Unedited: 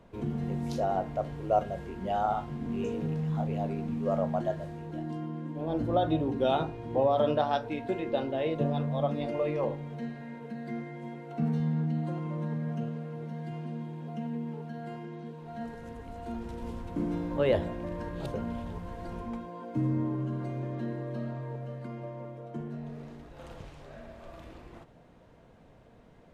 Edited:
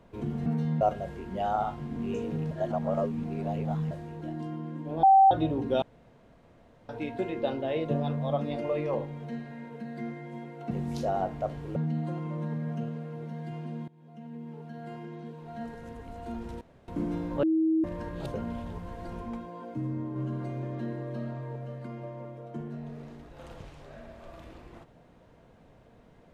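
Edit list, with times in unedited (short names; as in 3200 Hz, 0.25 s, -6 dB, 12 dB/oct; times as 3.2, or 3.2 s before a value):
0.46–1.51 swap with 11.41–11.76
3.21–4.61 reverse
5.73–6.01 bleep 775 Hz -14 dBFS
6.52–7.59 room tone
13.88–15.05 fade in, from -21.5 dB
16.61–16.88 room tone
17.43–17.84 bleep 320 Hz -21.5 dBFS
19.74–20.16 gain -4.5 dB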